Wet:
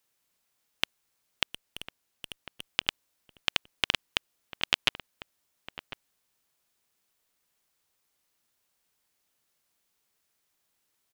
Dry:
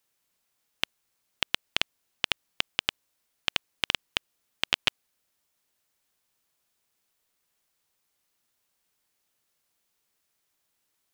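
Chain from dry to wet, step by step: 1.46–2.66 s: valve stage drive 26 dB, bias 0.4; echo from a far wall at 180 m, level -11 dB

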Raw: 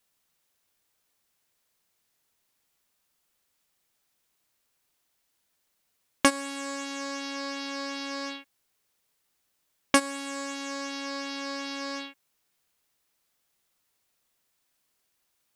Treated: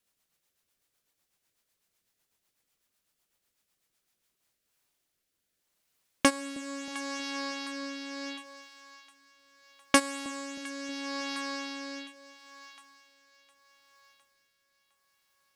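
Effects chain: two-band feedback delay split 780 Hz, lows 316 ms, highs 709 ms, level -15.5 dB; rotary cabinet horn 8 Hz, later 0.75 Hz, at 3.95 s

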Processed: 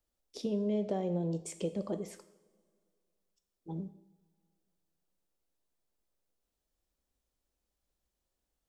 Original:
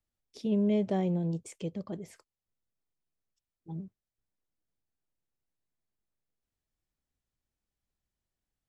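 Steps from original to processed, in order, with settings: ten-band graphic EQ 125 Hz -11 dB, 500 Hz +4 dB, 2 kHz -5 dB; compression 6:1, threshold -34 dBFS, peak gain reduction 9.5 dB; two-slope reverb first 0.65 s, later 2.2 s, from -18 dB, DRR 9 dB; trim +4 dB

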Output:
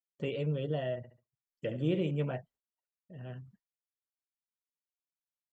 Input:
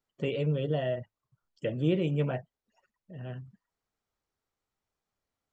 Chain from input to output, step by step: 0.97–2.11 s: flutter echo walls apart 11.9 m, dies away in 0.42 s; expander -53 dBFS; trim -4 dB

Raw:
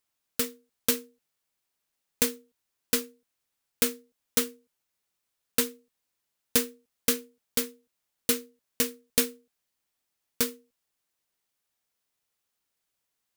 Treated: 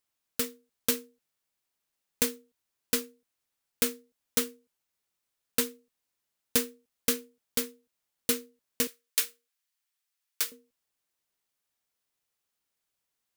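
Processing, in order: 8.87–10.52 s: high-pass 1.2 kHz 12 dB/octave; trim -2 dB

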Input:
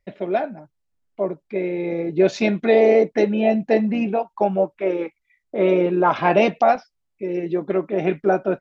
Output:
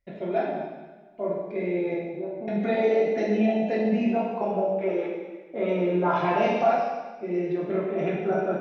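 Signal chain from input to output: compression 2:1, threshold -20 dBFS, peak gain reduction 5.5 dB; 1.94–2.48 s: four-pole ladder low-pass 1 kHz, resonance 60%; plate-style reverb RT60 1.3 s, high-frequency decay 1×, DRR -5 dB; trim -8 dB

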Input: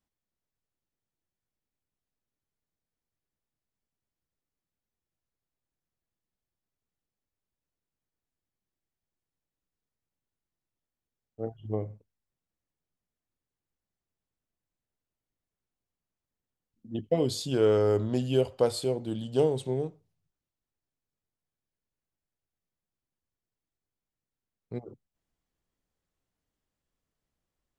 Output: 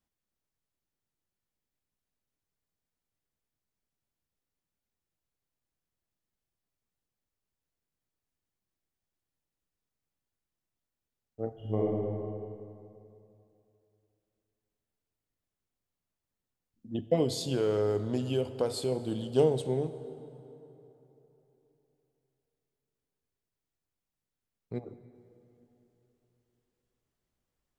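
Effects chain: 17.23–18.92 s: compression 2:1, threshold -29 dBFS, peak gain reduction 6 dB; plate-style reverb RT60 3.5 s, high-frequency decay 0.6×, DRR 12 dB; 11.53–11.93 s: reverb throw, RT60 2.6 s, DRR -4 dB

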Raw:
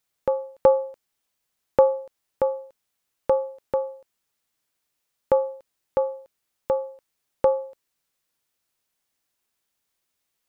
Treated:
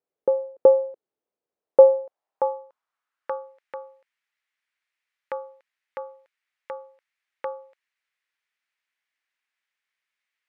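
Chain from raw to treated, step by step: band-pass sweep 430 Hz -> 2 kHz, 1.48–3.65 s; trim +5.5 dB

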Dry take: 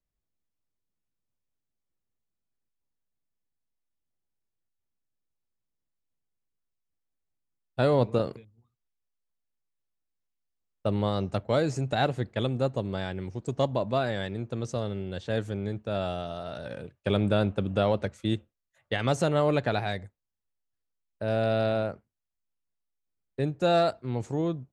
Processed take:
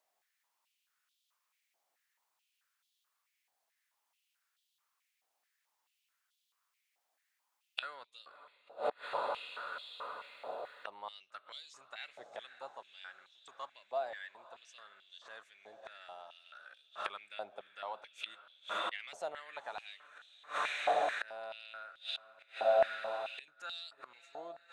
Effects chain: echo that smears into a reverb 559 ms, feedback 61%, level -13.5 dB; inverted gate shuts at -30 dBFS, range -27 dB; step-sequenced high-pass 4.6 Hz 730–3400 Hz; trim +10 dB

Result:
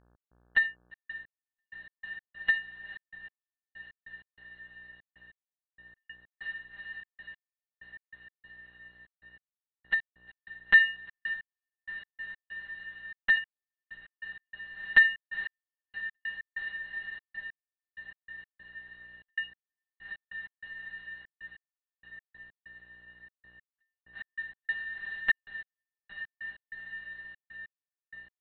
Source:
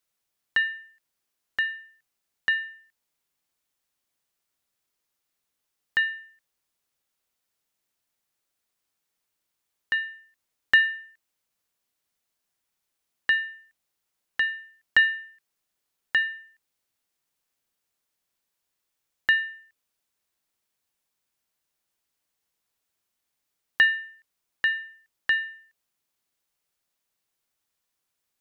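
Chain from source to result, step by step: crossover distortion -36 dBFS; monotone LPC vocoder at 8 kHz 200 Hz; mains buzz 60 Hz, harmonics 29, -66 dBFS -5 dB/octave; on a send: echo that smears into a reverb 473 ms, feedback 76%, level -11 dB; on the sum: trance gate "x.xxxx.x...x." 96 bpm -60 dB

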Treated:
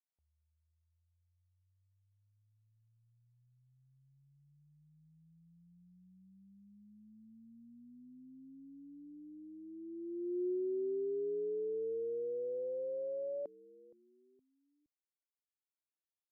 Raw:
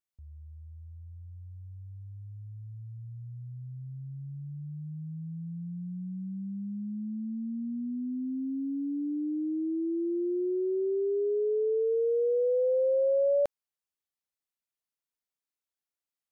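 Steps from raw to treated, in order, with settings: band-pass sweep 800 Hz -> 330 Hz, 9.61–10.58 s; frequency-shifting echo 467 ms, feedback 35%, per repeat -92 Hz, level -21 dB; trim -5.5 dB

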